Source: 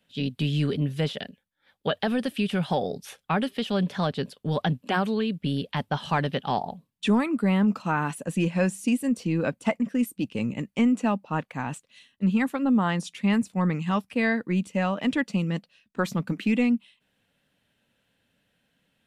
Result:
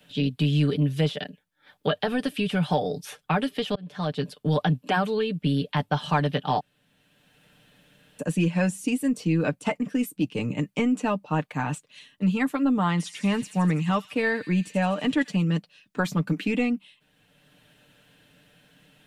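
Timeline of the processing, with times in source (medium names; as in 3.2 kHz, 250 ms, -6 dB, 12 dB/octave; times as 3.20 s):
3.75–4.37 s: fade in
6.60–8.19 s: room tone
12.89–15.36 s: feedback echo behind a high-pass 83 ms, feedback 68%, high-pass 4.3 kHz, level -6 dB
whole clip: band-stop 2 kHz, Q 28; comb 6.7 ms, depth 57%; three bands compressed up and down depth 40%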